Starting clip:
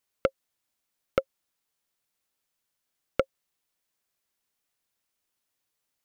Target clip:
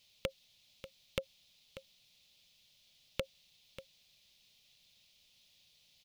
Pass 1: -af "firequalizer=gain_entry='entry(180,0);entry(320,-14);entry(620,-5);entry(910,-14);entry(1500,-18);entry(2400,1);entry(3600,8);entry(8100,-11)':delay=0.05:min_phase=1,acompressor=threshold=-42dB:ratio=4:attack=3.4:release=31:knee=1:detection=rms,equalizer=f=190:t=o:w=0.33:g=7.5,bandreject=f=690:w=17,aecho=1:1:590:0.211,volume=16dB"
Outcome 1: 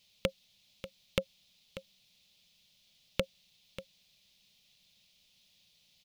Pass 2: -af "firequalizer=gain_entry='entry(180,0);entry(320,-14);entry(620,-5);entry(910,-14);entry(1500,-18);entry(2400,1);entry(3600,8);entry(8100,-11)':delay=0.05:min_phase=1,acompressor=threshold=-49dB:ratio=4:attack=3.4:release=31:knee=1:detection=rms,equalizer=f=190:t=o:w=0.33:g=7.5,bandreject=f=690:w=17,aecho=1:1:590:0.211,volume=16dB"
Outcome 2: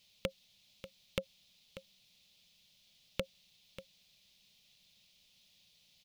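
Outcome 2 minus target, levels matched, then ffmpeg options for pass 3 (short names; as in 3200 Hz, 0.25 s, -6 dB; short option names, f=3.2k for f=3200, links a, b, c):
250 Hz band +3.5 dB
-af "firequalizer=gain_entry='entry(180,0);entry(320,-14);entry(620,-5);entry(910,-14);entry(1500,-18);entry(2400,1);entry(3600,8);entry(8100,-11)':delay=0.05:min_phase=1,acompressor=threshold=-49dB:ratio=4:attack=3.4:release=31:knee=1:detection=rms,bandreject=f=690:w=17,aecho=1:1:590:0.211,volume=16dB"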